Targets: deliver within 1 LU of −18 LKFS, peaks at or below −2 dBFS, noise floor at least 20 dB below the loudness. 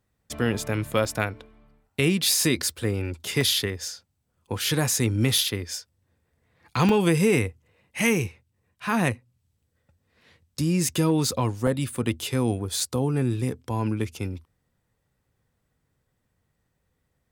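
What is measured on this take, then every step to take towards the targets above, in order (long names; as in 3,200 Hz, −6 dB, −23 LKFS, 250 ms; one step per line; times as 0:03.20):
number of dropouts 6; longest dropout 2.8 ms; integrated loudness −25.0 LKFS; sample peak −6.0 dBFS; target loudness −18.0 LKFS
→ repair the gap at 0:01.05/0:03.41/0:05.38/0:06.89/0:11.67/0:12.80, 2.8 ms
level +7 dB
brickwall limiter −2 dBFS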